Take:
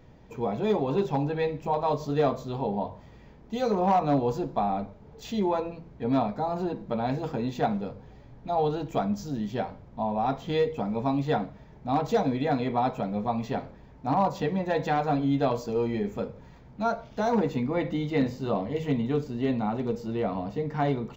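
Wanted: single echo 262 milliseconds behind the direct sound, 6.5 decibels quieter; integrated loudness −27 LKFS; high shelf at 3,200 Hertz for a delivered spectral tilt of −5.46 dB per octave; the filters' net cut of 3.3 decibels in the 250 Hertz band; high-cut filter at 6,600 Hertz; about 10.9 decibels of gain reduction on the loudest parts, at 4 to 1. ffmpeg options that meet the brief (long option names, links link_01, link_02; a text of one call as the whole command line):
ffmpeg -i in.wav -af "lowpass=6600,equalizer=frequency=250:width_type=o:gain=-4,highshelf=frequency=3200:gain=-7.5,acompressor=threshold=-34dB:ratio=4,aecho=1:1:262:0.473,volume=10dB" out.wav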